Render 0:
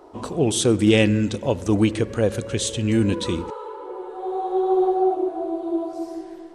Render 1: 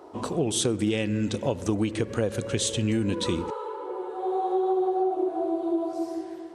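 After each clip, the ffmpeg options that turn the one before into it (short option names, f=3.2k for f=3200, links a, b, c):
-af "highpass=77,acompressor=threshold=-21dB:ratio=12"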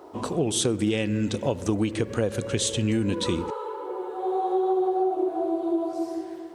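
-af "acrusher=bits=11:mix=0:aa=0.000001,volume=1dB"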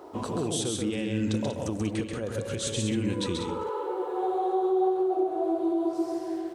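-af "alimiter=limit=-20.5dB:level=0:latency=1:release=393,aecho=1:1:134.1|189.5:0.631|0.398"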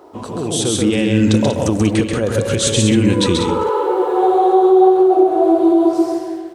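-af "dynaudnorm=f=130:g=9:m=12dB,volume=3dB"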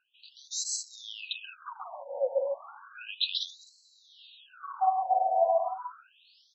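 -af "asuperstop=centerf=2000:order=20:qfactor=2.3,afftfilt=real='re*between(b*sr/1024,670*pow(5700/670,0.5+0.5*sin(2*PI*0.33*pts/sr))/1.41,670*pow(5700/670,0.5+0.5*sin(2*PI*0.33*pts/sr))*1.41)':imag='im*between(b*sr/1024,670*pow(5700/670,0.5+0.5*sin(2*PI*0.33*pts/sr))/1.41,670*pow(5700/670,0.5+0.5*sin(2*PI*0.33*pts/sr))*1.41)':win_size=1024:overlap=0.75,volume=-6.5dB"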